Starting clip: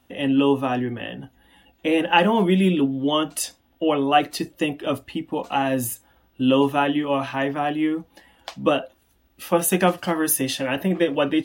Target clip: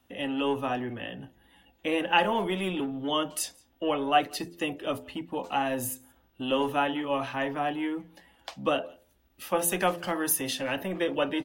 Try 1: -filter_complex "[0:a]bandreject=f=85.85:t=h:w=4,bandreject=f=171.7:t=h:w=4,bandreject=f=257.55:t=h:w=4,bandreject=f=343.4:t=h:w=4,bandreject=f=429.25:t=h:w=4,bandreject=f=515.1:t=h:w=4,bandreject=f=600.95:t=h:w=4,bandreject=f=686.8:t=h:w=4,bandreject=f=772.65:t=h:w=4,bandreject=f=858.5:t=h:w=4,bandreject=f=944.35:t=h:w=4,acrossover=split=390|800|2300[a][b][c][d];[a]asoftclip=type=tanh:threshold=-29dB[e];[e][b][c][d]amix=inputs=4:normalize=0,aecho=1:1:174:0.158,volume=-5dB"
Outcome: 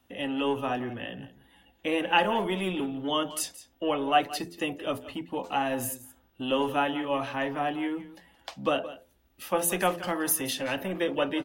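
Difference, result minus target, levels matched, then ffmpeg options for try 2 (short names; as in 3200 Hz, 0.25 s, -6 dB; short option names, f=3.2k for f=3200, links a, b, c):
echo-to-direct +7.5 dB
-filter_complex "[0:a]bandreject=f=85.85:t=h:w=4,bandreject=f=171.7:t=h:w=4,bandreject=f=257.55:t=h:w=4,bandreject=f=343.4:t=h:w=4,bandreject=f=429.25:t=h:w=4,bandreject=f=515.1:t=h:w=4,bandreject=f=600.95:t=h:w=4,bandreject=f=686.8:t=h:w=4,bandreject=f=772.65:t=h:w=4,bandreject=f=858.5:t=h:w=4,bandreject=f=944.35:t=h:w=4,acrossover=split=390|800|2300[a][b][c][d];[a]asoftclip=type=tanh:threshold=-29dB[e];[e][b][c][d]amix=inputs=4:normalize=0,aecho=1:1:174:0.0422,volume=-5dB"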